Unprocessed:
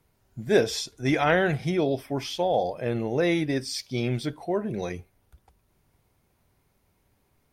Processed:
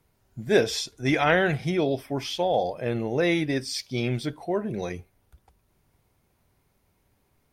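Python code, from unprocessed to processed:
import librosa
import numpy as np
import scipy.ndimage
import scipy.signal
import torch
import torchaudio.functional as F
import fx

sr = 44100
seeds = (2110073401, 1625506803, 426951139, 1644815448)

y = fx.dynamic_eq(x, sr, hz=2600.0, q=0.86, threshold_db=-37.0, ratio=4.0, max_db=3)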